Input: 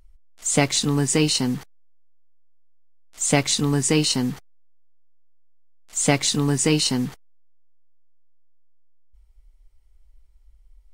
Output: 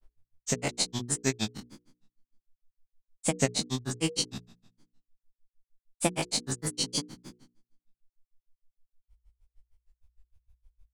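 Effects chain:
peak hold with a decay on every bin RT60 0.80 s
granular cloud 100 ms, grains 6.5 per second, pitch spread up and down by 3 semitones
mains-hum notches 60/120/180/240/300/360/420/480 Hz
level −6.5 dB

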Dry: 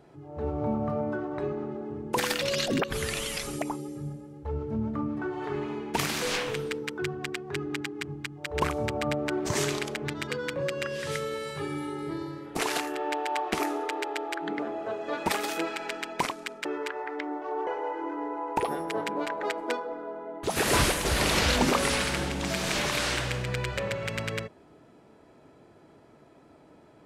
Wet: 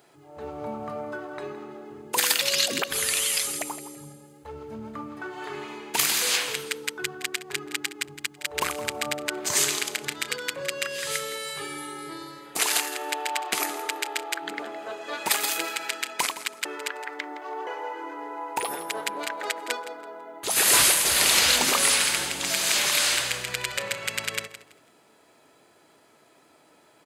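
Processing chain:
spectral tilt +4 dB per octave
notch filter 5,600 Hz, Q 15
repeating echo 165 ms, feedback 24%, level −14 dB

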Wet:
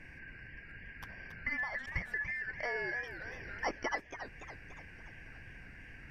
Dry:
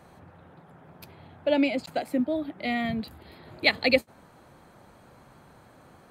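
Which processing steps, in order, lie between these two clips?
band-splitting scrambler in four parts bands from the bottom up 2143
downward compressor 4 to 1, threshold −36 dBFS, peak gain reduction 17.5 dB
RIAA equalisation playback
feedback echo with a swinging delay time 283 ms, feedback 54%, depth 191 cents, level −10 dB
level +1 dB

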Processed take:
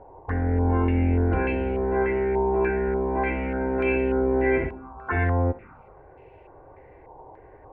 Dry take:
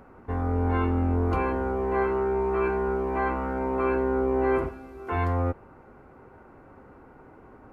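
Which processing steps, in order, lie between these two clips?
phaser swept by the level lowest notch 190 Hz, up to 1,200 Hz, full sweep at −26.5 dBFS
feedback echo with a high-pass in the loop 63 ms, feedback 43%, high-pass 720 Hz, level −12 dB
low-pass on a step sequencer 3.4 Hz 980–2,700 Hz
level +3.5 dB

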